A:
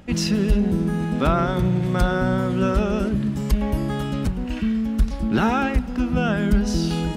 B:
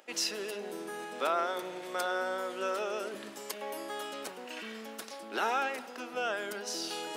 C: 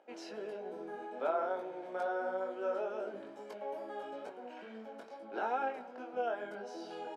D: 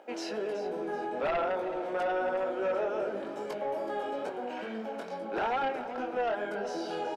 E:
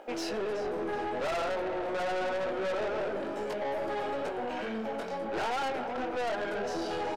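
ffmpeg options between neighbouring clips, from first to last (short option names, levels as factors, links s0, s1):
-af "highpass=f=420:w=0.5412,highpass=f=420:w=1.3066,highshelf=f=5100:g=6.5,areverse,acompressor=mode=upward:threshold=0.0355:ratio=2.5,areverse,volume=0.422"
-af "aecho=1:1:1.3:0.39,flanger=delay=18.5:depth=3:speed=2.3,bandpass=f=430:t=q:w=0.98:csg=0,volume=1.5"
-filter_complex "[0:a]asplit=2[s0][s1];[s1]acompressor=threshold=0.00631:ratio=6,volume=0.944[s2];[s0][s2]amix=inputs=2:normalize=0,aeval=exprs='0.1*sin(PI/2*2.24*val(0)/0.1)':c=same,asplit=5[s3][s4][s5][s6][s7];[s4]adelay=375,afreqshift=-39,volume=0.224[s8];[s5]adelay=750,afreqshift=-78,volume=0.0832[s9];[s6]adelay=1125,afreqshift=-117,volume=0.0305[s10];[s7]adelay=1500,afreqshift=-156,volume=0.0114[s11];[s3][s8][s9][s10][s11]amix=inputs=5:normalize=0,volume=0.531"
-af "aeval=exprs='(tanh(56.2*val(0)+0.25)-tanh(0.25))/56.2':c=same,volume=1.88"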